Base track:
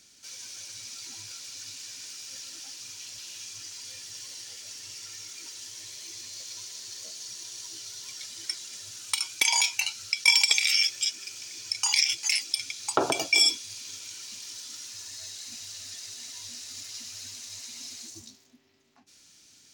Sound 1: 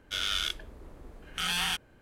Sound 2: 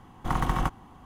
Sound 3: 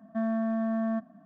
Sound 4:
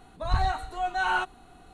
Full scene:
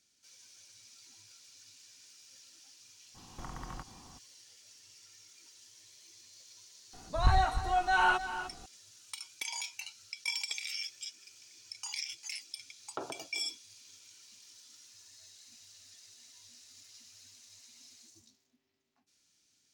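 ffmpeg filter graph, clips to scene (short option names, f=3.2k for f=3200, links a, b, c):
-filter_complex "[0:a]volume=-15.5dB[a];[2:a]acompressor=threshold=-35dB:ratio=6:attack=3.2:release=140:knee=1:detection=peak[b];[4:a]aecho=1:1:303:0.251[c];[b]atrim=end=1.05,asetpts=PTS-STARTPTS,volume=-5dB,afade=t=in:d=0.02,afade=t=out:st=1.03:d=0.02,adelay=3140[d];[c]atrim=end=1.73,asetpts=PTS-STARTPTS,volume=-0.5dB,afade=t=in:d=0.004:c=hsin,afade=t=out:st=1.726:d=0.004:c=hsin,adelay=6930[e];[a][d][e]amix=inputs=3:normalize=0"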